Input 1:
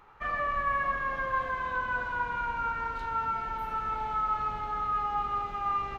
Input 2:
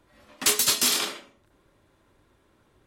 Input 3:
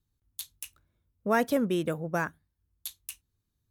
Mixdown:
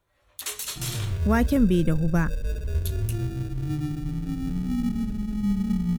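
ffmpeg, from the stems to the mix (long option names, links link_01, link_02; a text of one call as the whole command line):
ffmpeg -i stem1.wav -i stem2.wav -i stem3.wav -filter_complex "[0:a]acrusher=samples=42:mix=1:aa=0.000001,adelay=550,volume=-8dB[link_01];[1:a]highpass=frequency=370:width=0.5412,highpass=frequency=370:width=1.3066,bandreject=frequency=4900:width=7.3,volume=-10.5dB[link_02];[2:a]volume=1dB[link_03];[link_01][link_02][link_03]amix=inputs=3:normalize=0,asubboost=boost=10:cutoff=230" out.wav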